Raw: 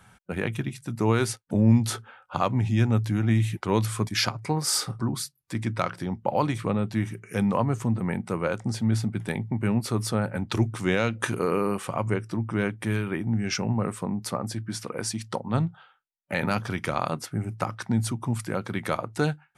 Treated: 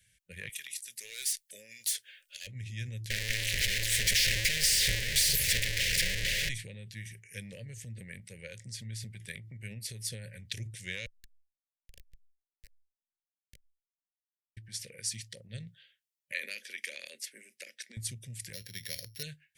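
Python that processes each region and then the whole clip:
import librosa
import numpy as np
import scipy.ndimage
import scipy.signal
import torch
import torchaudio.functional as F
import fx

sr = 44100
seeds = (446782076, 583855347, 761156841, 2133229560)

y = fx.chain(x, sr, fx.highpass(hz=480.0, slope=12),
    fx.tilt_eq(slope=3.5),
    fx.clip_hard(threshold_db=-24.5), at=(0.49, 2.47))
y = fx.chain(y, sr, fx.clip_1bit(),
    fx.tilt_eq(slope=-4.5),
    fx.spectral_comp(ratio=4.0), at=(3.1, 6.49))
y = fx.chain(y, sr, fx.filter_lfo_bandpass(shape='saw_up', hz=1.4, low_hz=720.0, high_hz=7300.0, q=2.3),
    fx.schmitt(flips_db=-24.5),
    fx.env_flatten(amount_pct=70), at=(11.06, 14.57))
y = fx.chain(y, sr, fx.steep_highpass(hz=250.0, slope=48),
    fx.peak_eq(hz=2400.0, db=3.5, octaves=0.37), at=(16.32, 17.97))
y = fx.chain(y, sr, fx.sample_sort(block=8),
    fx.peak_eq(hz=7200.0, db=-10.0, octaves=0.58), at=(18.53, 19.23))
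y = scipy.signal.sosfilt(scipy.signal.ellip(3, 1.0, 40, [540.0, 1800.0], 'bandstop', fs=sr, output='sos'), y)
y = fx.tone_stack(y, sr, knobs='10-0-10')
y = fx.transient(y, sr, attack_db=4, sustain_db=8)
y = y * 10.0 ** (-4.5 / 20.0)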